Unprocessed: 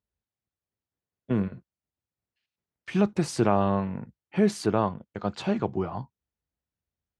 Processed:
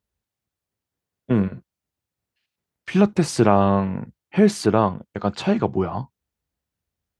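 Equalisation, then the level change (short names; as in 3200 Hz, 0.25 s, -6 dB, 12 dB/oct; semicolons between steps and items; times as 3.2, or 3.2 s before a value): none; +6.5 dB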